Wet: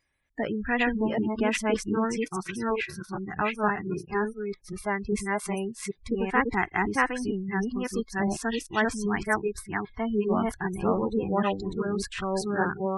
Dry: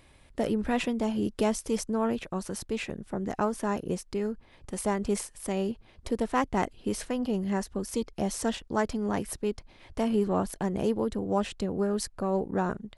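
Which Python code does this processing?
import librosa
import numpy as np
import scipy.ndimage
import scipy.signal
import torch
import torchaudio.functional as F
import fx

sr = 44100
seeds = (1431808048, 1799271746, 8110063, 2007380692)

y = fx.reverse_delay(x, sr, ms=394, wet_db=0)
y = scipy.signal.sosfilt(scipy.signal.butter(2, 10000.0, 'lowpass', fs=sr, output='sos'), y)
y = fx.spec_gate(y, sr, threshold_db=-30, keep='strong')
y = fx.peak_eq(y, sr, hz=7500.0, db=-11.0, octaves=0.6, at=(2.61, 5.13))
y = fx.noise_reduce_blind(y, sr, reduce_db=21)
y = fx.peak_eq(y, sr, hz=1800.0, db=12.5, octaves=0.88)
y = F.gain(torch.from_numpy(y), -1.5).numpy()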